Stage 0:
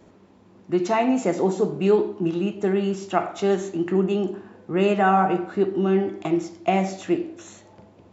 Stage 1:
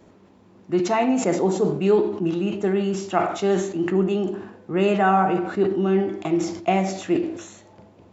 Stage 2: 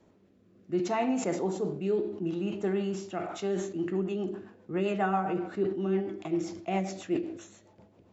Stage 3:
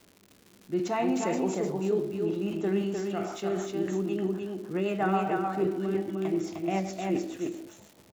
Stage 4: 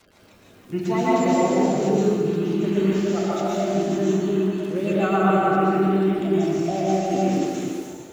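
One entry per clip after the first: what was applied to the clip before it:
level that may fall only so fast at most 74 dB per second
rotating-speaker cabinet horn 0.65 Hz, later 7.5 Hz, at 0:03.00; level −7.5 dB
surface crackle 160 per second −41 dBFS; single-tap delay 305 ms −3.5 dB
spectral magnitudes quantised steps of 30 dB; dense smooth reverb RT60 1.6 s, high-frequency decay 0.8×, pre-delay 105 ms, DRR −6 dB; level +2.5 dB

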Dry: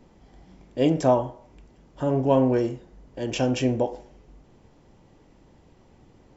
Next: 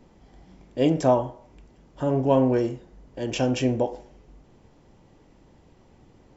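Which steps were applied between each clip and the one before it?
no processing that can be heard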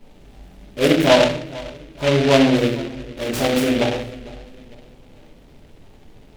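feedback echo with a low-pass in the loop 453 ms, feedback 40%, low-pass 1,700 Hz, level −19 dB
rectangular room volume 72 cubic metres, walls mixed, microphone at 1.3 metres
short delay modulated by noise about 2,300 Hz, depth 0.11 ms
level −1 dB

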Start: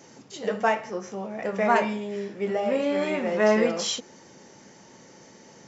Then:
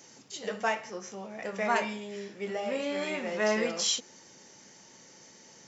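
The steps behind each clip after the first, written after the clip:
high-shelf EQ 2,000 Hz +11 dB
level −8.5 dB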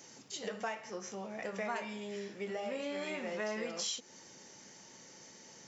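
downward compressor 3 to 1, threshold −36 dBFS, peak gain reduction 11 dB
level −1 dB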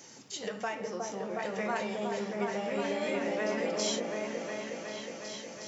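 echo whose low-pass opens from repeat to repeat 364 ms, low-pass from 750 Hz, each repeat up 1 octave, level 0 dB
level +3 dB

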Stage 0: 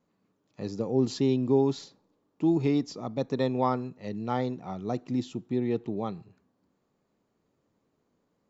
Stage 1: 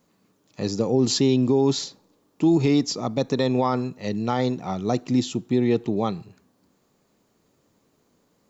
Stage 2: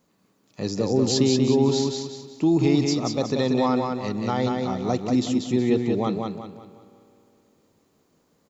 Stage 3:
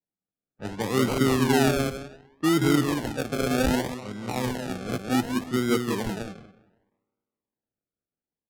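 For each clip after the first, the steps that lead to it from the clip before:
high-shelf EQ 3,700 Hz +10.5 dB; brickwall limiter −19 dBFS, peak gain reduction 6.5 dB; level +8 dB
on a send: repeating echo 185 ms, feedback 37%, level −4 dB; on the sum: spring reverb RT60 3.1 s, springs 51 ms, chirp 20 ms, DRR 18.5 dB; level −1.5 dB
sample-and-hold swept by an LFO 36×, swing 60% 0.66 Hz; low-pass that shuts in the quiet parts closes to 2,000 Hz, open at −20 dBFS; multiband upward and downward expander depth 70%; level −3 dB

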